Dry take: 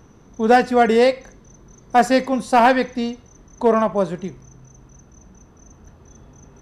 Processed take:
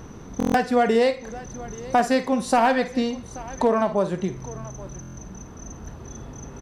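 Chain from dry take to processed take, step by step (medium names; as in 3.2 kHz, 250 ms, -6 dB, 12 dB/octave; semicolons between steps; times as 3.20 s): compression 2.5:1, threshold -31 dBFS, peak gain reduction 14.5 dB; on a send: multi-tap echo 53/831 ms -12.5/-18.5 dB; on the sum: buffer glitch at 0.38/5.01 s, samples 1024, times 6; trim +8 dB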